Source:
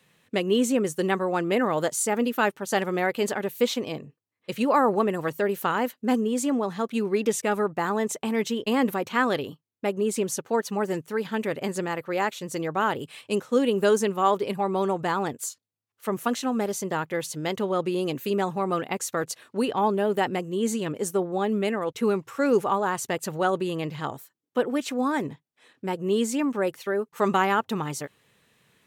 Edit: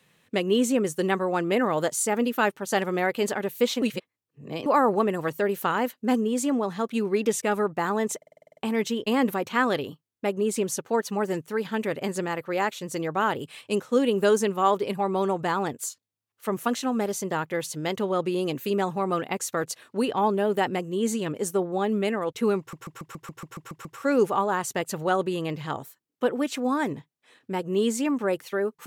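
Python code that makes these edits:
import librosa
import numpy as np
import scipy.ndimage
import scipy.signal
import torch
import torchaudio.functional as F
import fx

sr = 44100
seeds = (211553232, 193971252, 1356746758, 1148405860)

y = fx.edit(x, sr, fx.reverse_span(start_s=3.82, length_s=0.84),
    fx.stutter(start_s=8.17, slice_s=0.05, count=9),
    fx.stutter(start_s=22.19, slice_s=0.14, count=10), tone=tone)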